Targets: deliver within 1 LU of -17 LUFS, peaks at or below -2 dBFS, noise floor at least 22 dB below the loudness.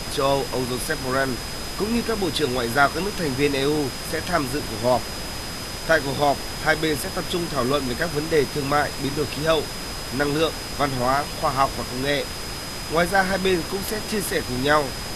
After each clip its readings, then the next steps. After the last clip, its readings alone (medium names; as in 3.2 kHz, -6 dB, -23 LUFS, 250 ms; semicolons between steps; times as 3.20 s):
steady tone 5 kHz; tone level -36 dBFS; noise floor -32 dBFS; noise floor target -46 dBFS; loudness -23.5 LUFS; peak level -4.0 dBFS; loudness target -17.0 LUFS
-> band-stop 5 kHz, Q 30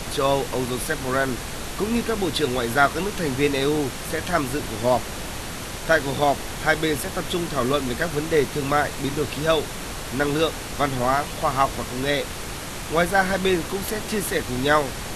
steady tone not found; noise floor -33 dBFS; noise floor target -46 dBFS
-> noise print and reduce 13 dB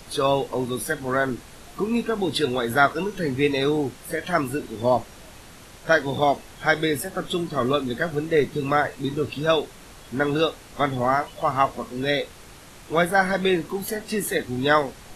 noise floor -45 dBFS; noise floor target -46 dBFS
-> noise print and reduce 6 dB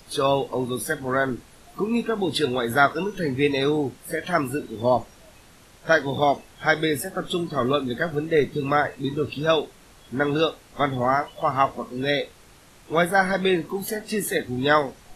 noise floor -51 dBFS; loudness -24.0 LUFS; peak level -4.0 dBFS; loudness target -17.0 LUFS
-> trim +7 dB; peak limiter -2 dBFS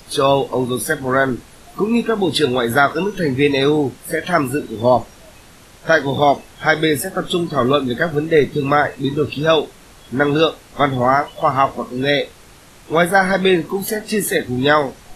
loudness -17.5 LUFS; peak level -2.0 dBFS; noise floor -44 dBFS